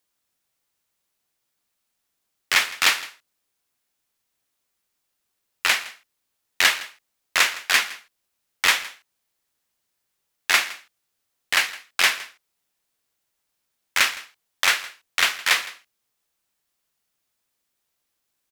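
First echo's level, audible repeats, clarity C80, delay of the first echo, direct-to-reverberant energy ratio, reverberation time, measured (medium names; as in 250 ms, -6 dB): -19.0 dB, 1, no reverb, 163 ms, no reverb, no reverb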